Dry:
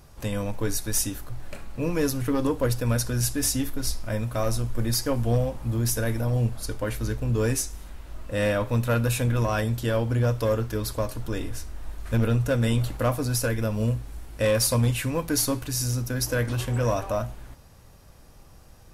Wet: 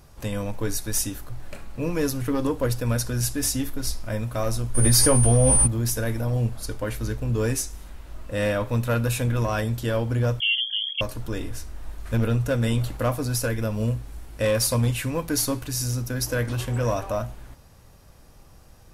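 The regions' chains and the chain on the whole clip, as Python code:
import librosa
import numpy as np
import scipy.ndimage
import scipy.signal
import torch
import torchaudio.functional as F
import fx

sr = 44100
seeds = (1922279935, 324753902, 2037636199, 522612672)

y = fx.doubler(x, sr, ms=16.0, db=-6, at=(4.74, 5.66), fade=0.02)
y = fx.dmg_tone(y, sr, hz=9300.0, level_db=-28.0, at=(4.74, 5.66), fade=0.02)
y = fx.env_flatten(y, sr, amount_pct=100, at=(4.74, 5.66), fade=0.02)
y = fx.chain(y, sr, fx.envelope_sharpen(power=2.0),
    fx.freq_invert(carrier_hz=3300), at=(10.4, 11.01))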